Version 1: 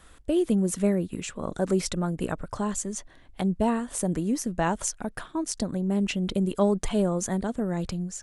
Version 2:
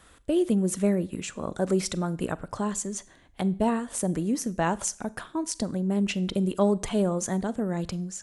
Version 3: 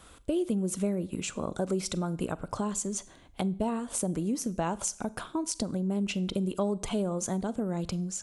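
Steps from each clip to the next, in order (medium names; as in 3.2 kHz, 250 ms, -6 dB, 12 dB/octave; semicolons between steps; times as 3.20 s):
high-pass 65 Hz 6 dB/octave; Schroeder reverb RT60 0.47 s, combs from 32 ms, DRR 19 dB
peaking EQ 1.8 kHz -9.5 dB 0.26 oct; compression 2.5:1, threshold -32 dBFS, peak gain reduction 10 dB; trim +2.5 dB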